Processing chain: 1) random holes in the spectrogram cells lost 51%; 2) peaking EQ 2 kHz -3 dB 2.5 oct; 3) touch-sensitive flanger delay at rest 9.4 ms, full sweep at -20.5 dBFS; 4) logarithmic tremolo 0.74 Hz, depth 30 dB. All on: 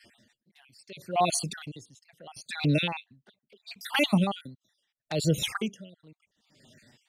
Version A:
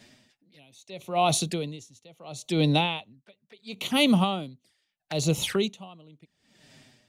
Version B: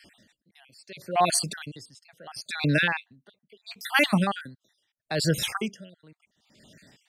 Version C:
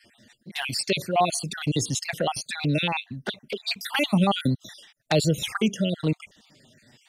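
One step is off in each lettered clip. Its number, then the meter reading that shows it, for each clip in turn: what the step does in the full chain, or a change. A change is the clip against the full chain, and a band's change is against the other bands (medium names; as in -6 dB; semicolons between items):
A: 1, 2 kHz band -3.0 dB; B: 3, 2 kHz band +5.5 dB; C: 4, momentary loudness spread change -12 LU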